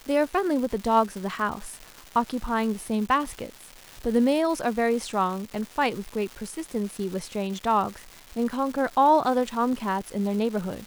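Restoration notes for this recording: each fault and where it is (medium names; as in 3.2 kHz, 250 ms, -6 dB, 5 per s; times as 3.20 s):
crackle 600 per s -34 dBFS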